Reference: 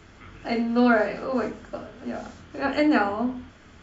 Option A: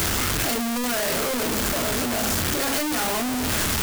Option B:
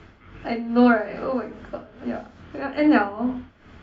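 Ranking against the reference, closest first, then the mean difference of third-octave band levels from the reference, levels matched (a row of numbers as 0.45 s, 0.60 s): B, A; 3.5 dB, 19.0 dB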